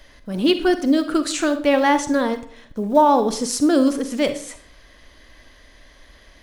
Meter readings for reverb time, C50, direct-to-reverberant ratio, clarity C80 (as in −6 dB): 0.55 s, 11.5 dB, 9.5 dB, 15.5 dB